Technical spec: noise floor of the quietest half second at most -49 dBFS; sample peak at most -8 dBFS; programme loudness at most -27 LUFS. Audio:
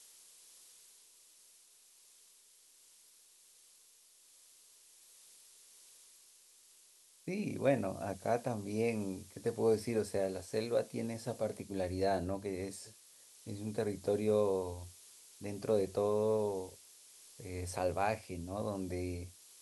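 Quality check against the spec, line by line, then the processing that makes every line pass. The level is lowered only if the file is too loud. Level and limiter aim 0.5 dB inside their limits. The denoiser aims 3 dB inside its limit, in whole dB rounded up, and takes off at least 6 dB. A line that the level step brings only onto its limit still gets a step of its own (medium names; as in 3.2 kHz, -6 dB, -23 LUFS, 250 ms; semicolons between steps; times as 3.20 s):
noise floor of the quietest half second -64 dBFS: pass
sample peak -17.5 dBFS: pass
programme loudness -36.5 LUFS: pass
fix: none needed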